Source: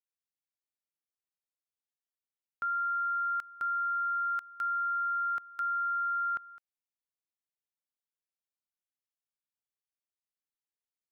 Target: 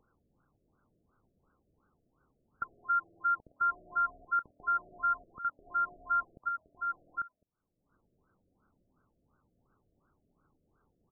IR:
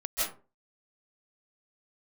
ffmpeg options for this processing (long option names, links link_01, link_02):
-af "equalizer=frequency=700:width_type=o:width=1.5:gain=-14,bandreject=frequency=960:width=20,aecho=1:1:115|288|376|846:0.133|0.178|0.1|0.447,acompressor=mode=upward:threshold=-48dB:ratio=2.5,aresample=8000,aeval=exprs='0.0562*sin(PI/2*2.82*val(0)/0.0562)':channel_layout=same,aresample=44100,acrusher=bits=2:mode=log:mix=0:aa=0.000001,afftfilt=real='re*lt(b*sr/1024,680*pow(1600/680,0.5+0.5*sin(2*PI*2.8*pts/sr)))':imag='im*lt(b*sr/1024,680*pow(1600/680,0.5+0.5*sin(2*PI*2.8*pts/sr)))':win_size=1024:overlap=0.75"